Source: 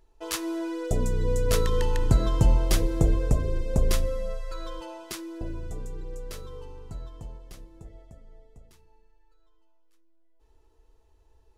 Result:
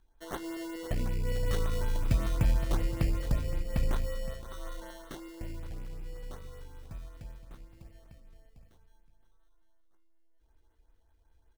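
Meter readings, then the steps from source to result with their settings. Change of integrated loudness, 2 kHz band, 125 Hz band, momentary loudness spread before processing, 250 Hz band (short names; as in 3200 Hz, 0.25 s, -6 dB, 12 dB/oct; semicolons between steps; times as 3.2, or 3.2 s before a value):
-7.0 dB, -4.5 dB, -6.0 dB, 19 LU, -7.0 dB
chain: bell 410 Hz -12.5 dB 0.29 oct; in parallel at -7.5 dB: soft clip -20.5 dBFS, distortion -11 dB; on the sum: sample-and-hold 18×; on a send: echo 0.518 s -14 dB; on the sum: LFO notch saw up 5.3 Hz 550–7400 Hz; gain -8 dB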